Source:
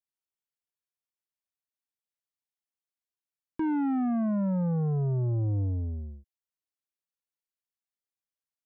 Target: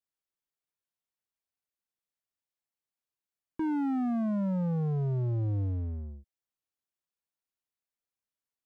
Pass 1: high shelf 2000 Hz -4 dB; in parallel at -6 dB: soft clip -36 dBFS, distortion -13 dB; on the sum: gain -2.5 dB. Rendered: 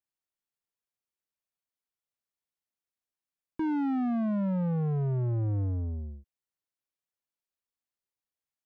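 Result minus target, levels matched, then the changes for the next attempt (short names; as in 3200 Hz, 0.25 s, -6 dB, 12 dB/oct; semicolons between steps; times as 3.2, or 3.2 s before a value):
soft clip: distortion -4 dB
change: soft clip -47 dBFS, distortion -9 dB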